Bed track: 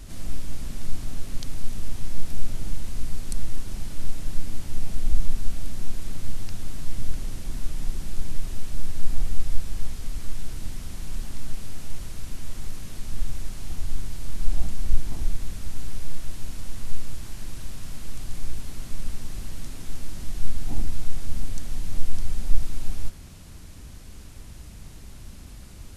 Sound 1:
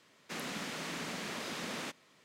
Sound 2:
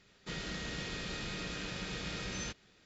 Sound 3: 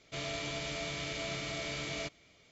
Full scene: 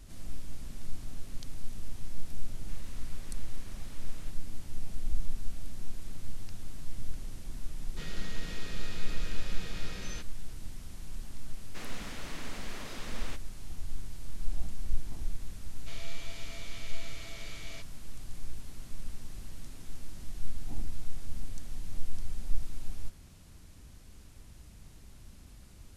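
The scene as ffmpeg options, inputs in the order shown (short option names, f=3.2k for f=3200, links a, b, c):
-filter_complex "[1:a]asplit=2[a][b];[0:a]volume=-9.5dB[c];[a]asoftclip=type=tanh:threshold=-39.5dB[d];[3:a]tiltshelf=f=740:g=-5[e];[d]atrim=end=2.24,asetpts=PTS-STARTPTS,volume=-14dB,afade=t=in:d=0.004:c=hsin,afade=t=out:st=2.236:d=0.004:c=hsin,adelay=2390[f];[2:a]atrim=end=2.85,asetpts=PTS-STARTPTS,volume=-4dB,afade=t=in:d=0.004:c=hsin,afade=t=out:st=2.846:d=0.004:c=hsin,adelay=339570S[g];[b]atrim=end=2.24,asetpts=PTS-STARTPTS,volume=-4.5dB,afade=t=in:d=0.004:c=hsin,afade=t=out:st=2.236:d=0.004:c=hsin,adelay=11450[h];[e]atrim=end=2.51,asetpts=PTS-STARTPTS,volume=-12dB,afade=t=in:d=0.004:c=hsin,afade=t=out:st=2.506:d=0.004:c=hsin,adelay=15740[i];[c][f][g][h][i]amix=inputs=5:normalize=0"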